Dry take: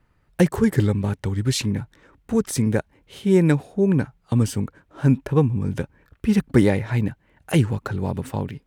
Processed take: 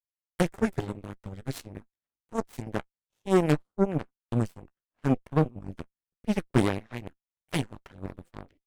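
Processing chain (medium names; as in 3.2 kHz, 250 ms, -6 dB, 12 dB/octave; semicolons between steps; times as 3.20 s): flange 1.6 Hz, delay 8.9 ms, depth 6.1 ms, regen +46%; Chebyshev shaper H 4 -16 dB, 5 -19 dB, 7 -13 dB, 8 -33 dB, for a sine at -6.5 dBFS; trim -4 dB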